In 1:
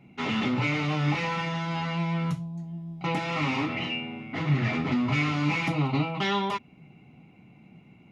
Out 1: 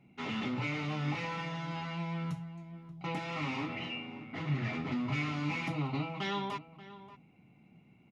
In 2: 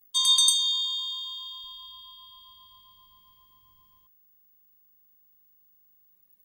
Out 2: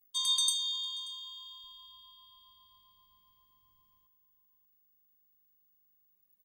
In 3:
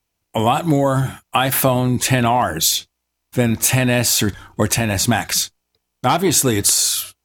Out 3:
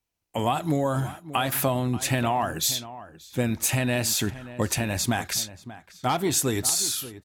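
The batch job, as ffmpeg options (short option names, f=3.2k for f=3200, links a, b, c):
-filter_complex "[0:a]asplit=2[a][b];[b]adelay=583.1,volume=-15dB,highshelf=f=4k:g=-13.1[c];[a][c]amix=inputs=2:normalize=0,volume=-8.5dB"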